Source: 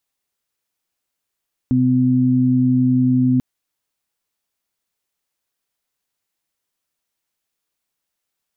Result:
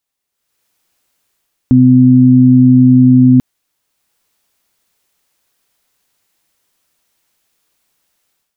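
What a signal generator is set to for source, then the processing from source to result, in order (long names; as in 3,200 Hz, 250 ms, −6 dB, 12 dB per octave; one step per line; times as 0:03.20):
steady harmonic partials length 1.69 s, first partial 127 Hz, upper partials 4.5 dB, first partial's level −18 dB
automatic gain control gain up to 14.5 dB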